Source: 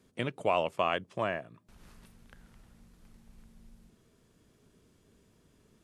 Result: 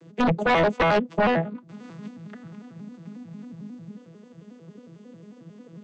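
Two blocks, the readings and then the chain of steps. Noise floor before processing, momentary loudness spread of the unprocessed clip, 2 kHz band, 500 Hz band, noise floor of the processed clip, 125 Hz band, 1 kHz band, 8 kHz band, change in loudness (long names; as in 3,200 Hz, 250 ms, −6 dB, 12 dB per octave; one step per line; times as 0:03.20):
−67 dBFS, 7 LU, +11.0 dB, +9.0 dB, −50 dBFS, +13.0 dB, +9.0 dB, can't be measured, +9.5 dB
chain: vocoder with an arpeggio as carrier major triad, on E3, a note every 90 ms
sine wavefolder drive 9 dB, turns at −20 dBFS
level +4 dB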